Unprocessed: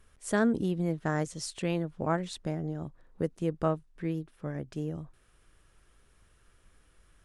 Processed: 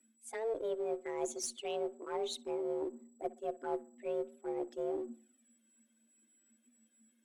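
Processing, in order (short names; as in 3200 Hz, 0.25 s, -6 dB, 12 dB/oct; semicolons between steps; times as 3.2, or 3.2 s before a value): per-bin expansion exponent 1.5; reverse; compressor 16:1, threshold -40 dBFS, peak gain reduction 19 dB; reverse; frequency shift +220 Hz; whine 7800 Hz -77 dBFS; envelope flanger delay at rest 2.1 ms, full sweep at -41 dBFS; added harmonics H 2 -25 dB, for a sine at -31.5 dBFS; in parallel at -5 dB: one-sided clip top -50.5 dBFS; on the sum: tape echo 64 ms, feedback 45%, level -18 dB, low-pass 1800 Hz; gain +5.5 dB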